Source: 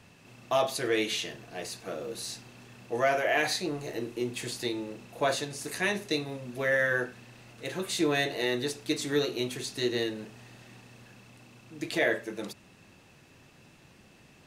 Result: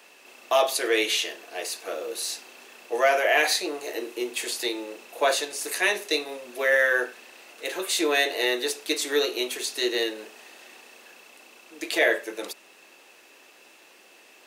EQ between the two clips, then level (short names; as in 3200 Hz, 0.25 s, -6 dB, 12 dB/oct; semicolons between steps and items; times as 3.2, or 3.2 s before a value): HPF 360 Hz 24 dB/oct; bell 2700 Hz +2.5 dB; high shelf 12000 Hz +11.5 dB; +5.0 dB